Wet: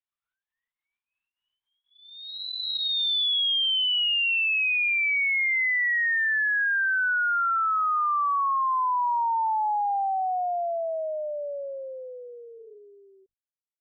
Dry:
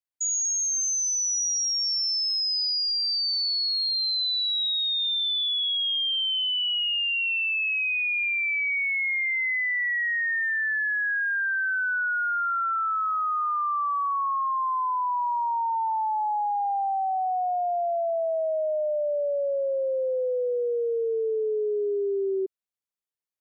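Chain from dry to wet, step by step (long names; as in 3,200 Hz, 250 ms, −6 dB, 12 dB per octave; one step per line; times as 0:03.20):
fade-out on the ending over 3.79 s
high-pass filter 700 Hz 24 dB per octave
phase-vocoder stretch with locked phases 0.59×
linear-prediction vocoder at 8 kHz whisper
level +2 dB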